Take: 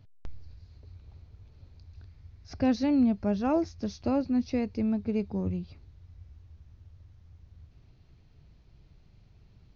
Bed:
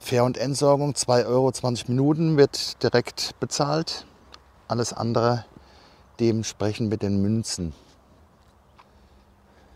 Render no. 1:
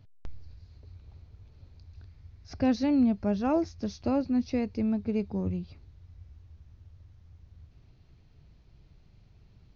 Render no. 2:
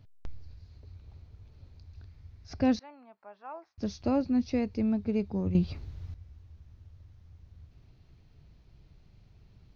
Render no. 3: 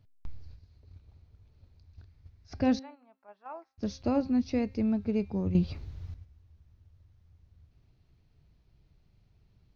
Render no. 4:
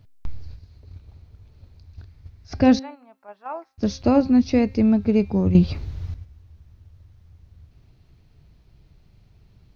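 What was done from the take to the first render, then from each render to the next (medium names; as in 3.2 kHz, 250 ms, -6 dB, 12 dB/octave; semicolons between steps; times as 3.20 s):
no audible change
2.79–3.78 s: ladder band-pass 1.2 kHz, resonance 35%; 5.55–6.14 s: gain +10.5 dB
de-hum 265.6 Hz, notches 15; gate -46 dBFS, range -7 dB
trim +10.5 dB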